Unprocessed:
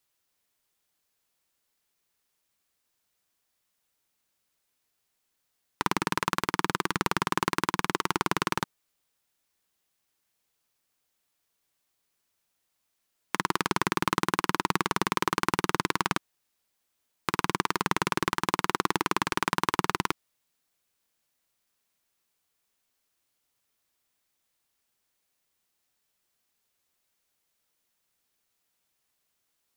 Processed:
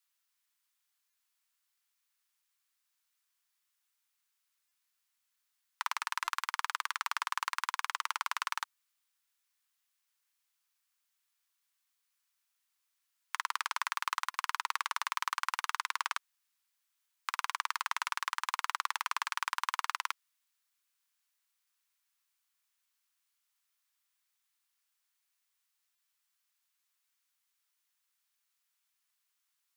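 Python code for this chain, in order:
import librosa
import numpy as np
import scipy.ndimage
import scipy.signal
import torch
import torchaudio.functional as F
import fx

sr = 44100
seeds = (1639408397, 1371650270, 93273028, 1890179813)

y = scipy.signal.sosfilt(scipy.signal.butter(4, 1000.0, 'highpass', fs=sr, output='sos'), x)
y = 10.0 ** (-11.0 / 20.0) * np.tanh(y / 10.0 ** (-11.0 / 20.0))
y = fx.buffer_glitch(y, sr, at_s=(1.1, 4.68, 6.24, 14.31, 25.95), block=128, repeats=10)
y = F.gain(torch.from_numpy(y), -3.5).numpy()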